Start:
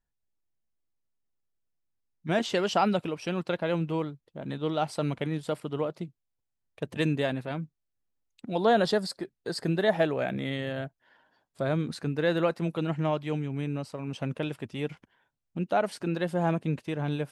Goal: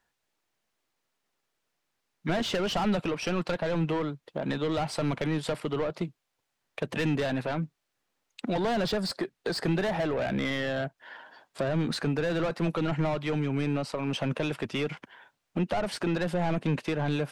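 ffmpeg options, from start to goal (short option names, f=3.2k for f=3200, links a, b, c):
-filter_complex "[0:a]asplit=2[a][b];[b]highpass=f=720:p=1,volume=24dB,asoftclip=type=tanh:threshold=-12.5dB[c];[a][c]amix=inputs=2:normalize=0,lowpass=f=3.4k:p=1,volume=-6dB,acrossover=split=220[d][e];[e]acompressor=threshold=-32dB:ratio=2.5[f];[d][f]amix=inputs=2:normalize=0"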